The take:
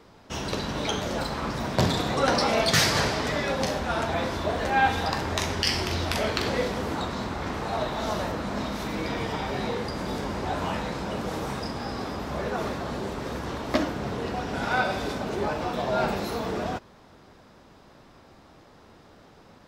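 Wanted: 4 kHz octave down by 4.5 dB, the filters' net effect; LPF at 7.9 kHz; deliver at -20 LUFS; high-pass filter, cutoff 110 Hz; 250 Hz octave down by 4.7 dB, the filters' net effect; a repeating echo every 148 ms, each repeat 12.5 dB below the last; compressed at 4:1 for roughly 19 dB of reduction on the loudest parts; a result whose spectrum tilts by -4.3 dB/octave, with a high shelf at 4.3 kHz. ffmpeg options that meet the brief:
-af "highpass=110,lowpass=7900,equalizer=f=250:t=o:g=-6,equalizer=f=4000:t=o:g=-8.5,highshelf=f=4300:g=5,acompressor=threshold=0.00708:ratio=4,aecho=1:1:148|296|444:0.237|0.0569|0.0137,volume=14.1"

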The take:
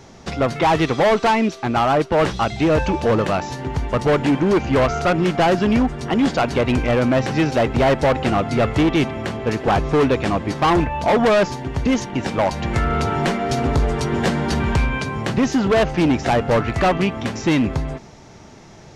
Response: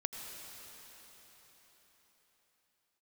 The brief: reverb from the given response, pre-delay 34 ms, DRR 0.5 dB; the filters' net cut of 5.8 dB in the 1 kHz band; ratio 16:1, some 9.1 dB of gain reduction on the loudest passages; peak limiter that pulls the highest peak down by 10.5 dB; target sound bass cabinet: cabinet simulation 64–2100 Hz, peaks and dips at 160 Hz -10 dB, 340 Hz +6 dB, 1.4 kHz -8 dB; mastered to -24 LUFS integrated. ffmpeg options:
-filter_complex "[0:a]equalizer=f=1000:t=o:g=-7,acompressor=threshold=0.0708:ratio=16,alimiter=limit=0.0631:level=0:latency=1,asplit=2[s0][s1];[1:a]atrim=start_sample=2205,adelay=34[s2];[s1][s2]afir=irnorm=-1:irlink=0,volume=0.841[s3];[s0][s3]amix=inputs=2:normalize=0,highpass=f=64:w=0.5412,highpass=f=64:w=1.3066,equalizer=f=160:t=q:w=4:g=-10,equalizer=f=340:t=q:w=4:g=6,equalizer=f=1400:t=q:w=4:g=-8,lowpass=f=2100:w=0.5412,lowpass=f=2100:w=1.3066,volume=1.68"

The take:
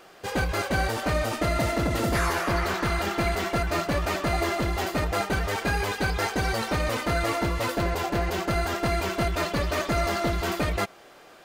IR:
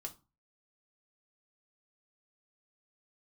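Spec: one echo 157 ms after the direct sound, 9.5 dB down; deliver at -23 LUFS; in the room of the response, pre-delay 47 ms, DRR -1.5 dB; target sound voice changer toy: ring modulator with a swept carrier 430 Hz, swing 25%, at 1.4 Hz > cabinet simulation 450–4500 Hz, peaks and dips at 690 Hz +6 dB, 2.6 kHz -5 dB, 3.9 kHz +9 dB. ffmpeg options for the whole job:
-filter_complex "[0:a]aecho=1:1:157:0.335,asplit=2[s0][s1];[1:a]atrim=start_sample=2205,adelay=47[s2];[s1][s2]afir=irnorm=-1:irlink=0,volume=1.78[s3];[s0][s3]amix=inputs=2:normalize=0,aeval=exprs='val(0)*sin(2*PI*430*n/s+430*0.25/1.4*sin(2*PI*1.4*n/s))':c=same,highpass=450,equalizer=f=690:t=q:w=4:g=6,equalizer=f=2600:t=q:w=4:g=-5,equalizer=f=3900:t=q:w=4:g=9,lowpass=f=4500:w=0.5412,lowpass=f=4500:w=1.3066,volume=1.26"

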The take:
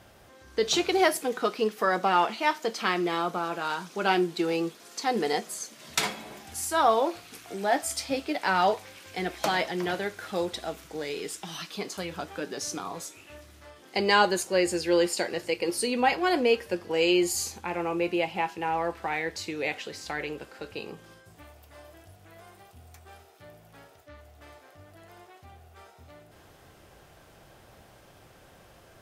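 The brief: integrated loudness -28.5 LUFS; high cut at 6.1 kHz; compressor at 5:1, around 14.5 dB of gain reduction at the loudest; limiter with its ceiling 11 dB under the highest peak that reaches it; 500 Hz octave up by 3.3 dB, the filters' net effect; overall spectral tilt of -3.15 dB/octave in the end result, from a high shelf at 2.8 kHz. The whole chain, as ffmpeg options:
-af "lowpass=6100,equalizer=f=500:t=o:g=4,highshelf=f=2800:g=3.5,acompressor=threshold=0.0251:ratio=5,volume=2.66,alimiter=limit=0.141:level=0:latency=1"

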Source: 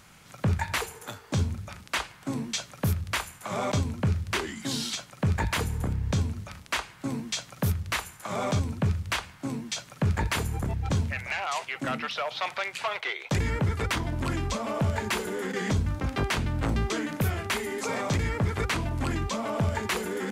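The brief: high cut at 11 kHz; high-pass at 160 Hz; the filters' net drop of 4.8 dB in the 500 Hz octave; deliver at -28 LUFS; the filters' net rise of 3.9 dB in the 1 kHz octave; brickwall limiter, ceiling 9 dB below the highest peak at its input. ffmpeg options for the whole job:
-af "highpass=160,lowpass=11000,equalizer=f=500:t=o:g=-8.5,equalizer=f=1000:t=o:g=7,volume=2,alimiter=limit=0.141:level=0:latency=1"

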